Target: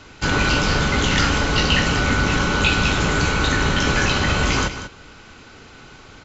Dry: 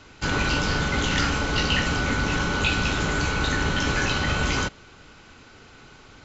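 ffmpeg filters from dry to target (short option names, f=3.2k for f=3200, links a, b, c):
-filter_complex "[0:a]asplit=2[a][b];[b]aecho=0:1:191:0.266[c];[a][c]amix=inputs=2:normalize=0,volume=5dB"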